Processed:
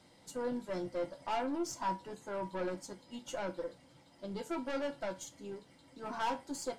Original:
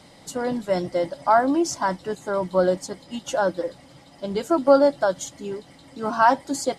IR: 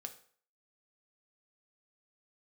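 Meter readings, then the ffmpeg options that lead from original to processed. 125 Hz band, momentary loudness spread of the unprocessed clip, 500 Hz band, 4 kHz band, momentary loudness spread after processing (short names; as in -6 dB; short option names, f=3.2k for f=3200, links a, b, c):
-14.5 dB, 16 LU, -17.5 dB, -12.0 dB, 11 LU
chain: -filter_complex "[0:a]aeval=exprs='(tanh(10*val(0)+0.35)-tanh(0.35))/10':c=same[a];[1:a]atrim=start_sample=2205,asetrate=83790,aresample=44100[b];[a][b]afir=irnorm=-1:irlink=0,volume=-2dB"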